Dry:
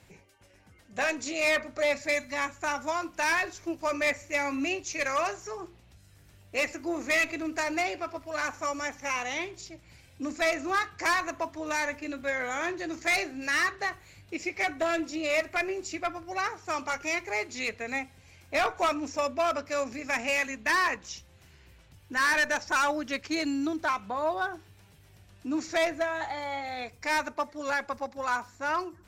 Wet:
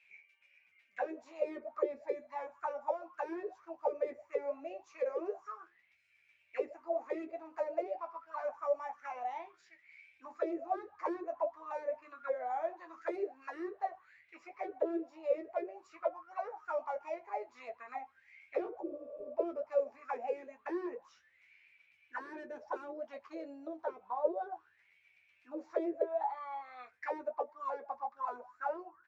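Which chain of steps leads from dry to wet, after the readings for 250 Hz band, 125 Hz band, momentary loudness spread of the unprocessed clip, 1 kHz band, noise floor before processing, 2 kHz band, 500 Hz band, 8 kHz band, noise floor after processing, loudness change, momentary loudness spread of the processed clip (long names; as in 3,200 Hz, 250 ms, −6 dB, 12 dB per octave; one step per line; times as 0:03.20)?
−10.5 dB, below −25 dB, 9 LU, −9.0 dB, −57 dBFS, −22.5 dB, −4.5 dB, below −30 dB, −71 dBFS, −10.0 dB, 11 LU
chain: envelope filter 360–2,500 Hz, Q 14, down, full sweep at −23.5 dBFS
healed spectral selection 0:18.82–0:19.26, 430–9,000 Hz after
ambience of single reflections 12 ms −5.5 dB, 25 ms −13 dB
level +6.5 dB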